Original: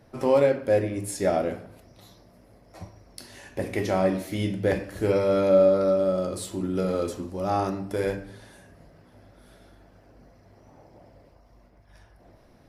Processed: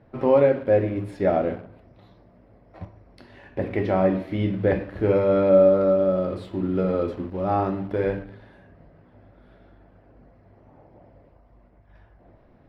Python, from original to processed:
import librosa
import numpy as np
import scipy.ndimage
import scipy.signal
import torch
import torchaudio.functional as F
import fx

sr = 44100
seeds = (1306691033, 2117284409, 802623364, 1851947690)

p1 = fx.quant_dither(x, sr, seeds[0], bits=6, dither='none')
p2 = x + (p1 * librosa.db_to_amplitude(-10.5))
p3 = fx.air_absorb(p2, sr, metres=410.0)
y = p3 * librosa.db_to_amplitude(1.5)